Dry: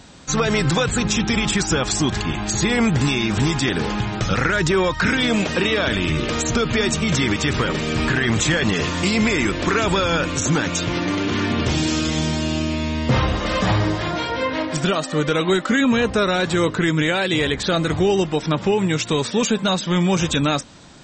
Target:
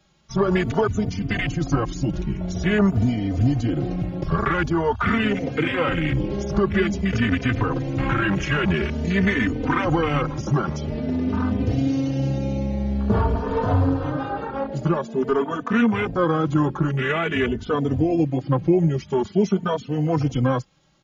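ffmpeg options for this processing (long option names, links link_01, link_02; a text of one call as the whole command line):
ffmpeg -i in.wav -filter_complex "[0:a]asetrate=38170,aresample=44100,atempo=1.15535,acrossover=split=120[link_01][link_02];[link_01]acrusher=samples=19:mix=1:aa=0.000001[link_03];[link_03][link_02]amix=inputs=2:normalize=0,afwtdn=0.0794,asplit=2[link_04][link_05];[link_05]adelay=3.2,afreqshift=0.48[link_06];[link_04][link_06]amix=inputs=2:normalize=1,volume=2dB" out.wav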